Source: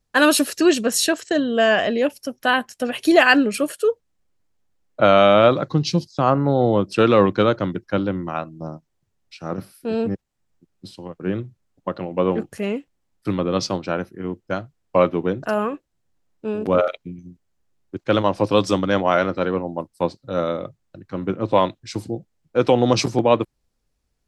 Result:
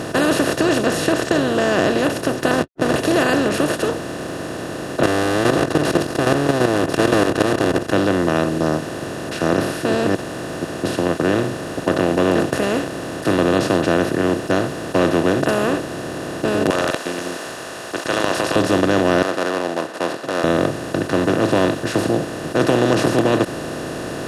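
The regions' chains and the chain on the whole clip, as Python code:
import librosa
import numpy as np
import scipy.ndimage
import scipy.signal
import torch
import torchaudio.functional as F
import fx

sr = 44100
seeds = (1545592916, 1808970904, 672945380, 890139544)

y = fx.chain(x, sr, fx.lowpass(hz=1500.0, slope=24),
    fx.backlash(play_db=-27.0),
    fx.env_flatten(amount_pct=70), at=(2.51, 2.96))
y = fx.chain(y, sr, fx.lower_of_two(delay_ms=2.5),
    fx.level_steps(step_db=16),
    fx.leveller(passes=1), at=(5.03, 7.92))
y = fx.chain(y, sr, fx.highpass(hz=1000.0, slope=24),
    fx.peak_eq(hz=6700.0, db=13.0, octaves=2.2),
    fx.transient(attack_db=-2, sustain_db=10), at=(16.7, 18.56))
y = fx.chain(y, sr, fx.median_filter(points=15),
    fx.highpass(hz=880.0, slope=24),
    fx.spacing_loss(db_at_10k=22), at=(19.22, 20.44))
y = fx.bin_compress(y, sr, power=0.2)
y = scipy.signal.sosfilt(scipy.signal.butter(2, 91.0, 'highpass', fs=sr, output='sos'), y)
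y = fx.low_shelf(y, sr, hz=370.0, db=11.0)
y = F.gain(torch.from_numpy(y), -13.0).numpy()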